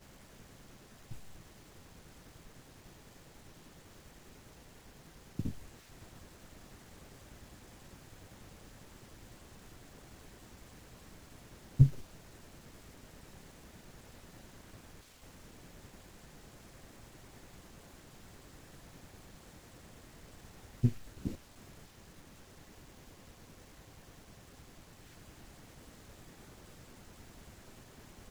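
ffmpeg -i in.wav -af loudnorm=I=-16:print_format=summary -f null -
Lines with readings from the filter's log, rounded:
Input Integrated:    -44.0 LUFS
Input True Peak:      -9.3 dBTP
Input LRA:            18.9 LU
Input Threshold:     -55.4 LUFS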